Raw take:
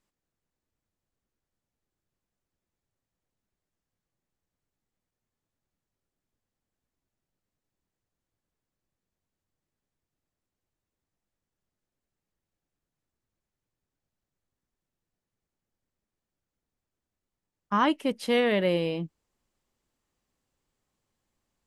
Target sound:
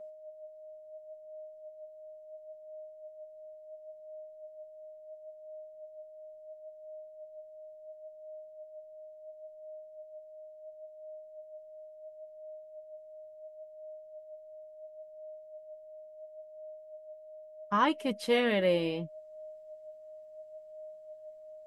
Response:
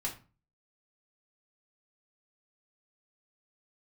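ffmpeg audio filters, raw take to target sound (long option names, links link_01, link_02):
-af "aeval=exprs='val(0)+0.00708*sin(2*PI*620*n/s)':channel_layout=same,flanger=delay=4.9:depth=4.5:regen=46:speed=0.72:shape=sinusoidal,volume=1.5dB"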